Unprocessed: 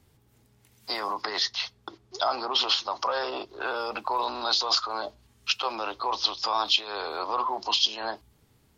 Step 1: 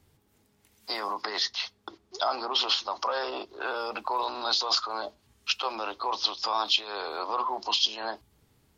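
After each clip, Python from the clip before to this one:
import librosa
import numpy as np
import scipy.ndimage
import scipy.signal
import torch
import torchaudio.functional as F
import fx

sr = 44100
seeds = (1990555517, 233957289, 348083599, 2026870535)

y = fx.hum_notches(x, sr, base_hz=60, count=4)
y = F.gain(torch.from_numpy(y), -1.5).numpy()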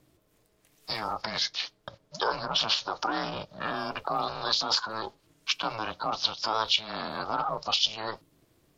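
y = x * np.sin(2.0 * np.pi * 220.0 * np.arange(len(x)) / sr)
y = F.gain(torch.from_numpy(y), 2.5).numpy()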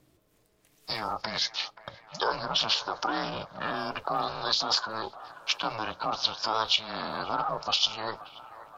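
y = fx.echo_wet_bandpass(x, sr, ms=529, feedback_pct=62, hz=1100.0, wet_db=-14.5)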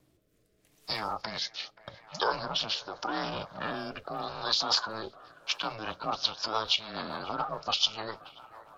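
y = fx.rotary_switch(x, sr, hz=0.8, then_hz=7.0, switch_at_s=5.34)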